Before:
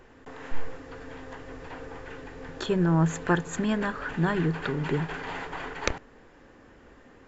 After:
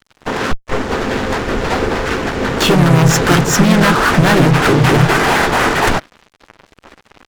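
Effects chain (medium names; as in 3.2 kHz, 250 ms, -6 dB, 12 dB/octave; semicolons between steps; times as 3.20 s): fuzz box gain 37 dB, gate -46 dBFS; harmony voices -4 st -3 dB, -3 st -6 dB, +4 st -16 dB; trim +2.5 dB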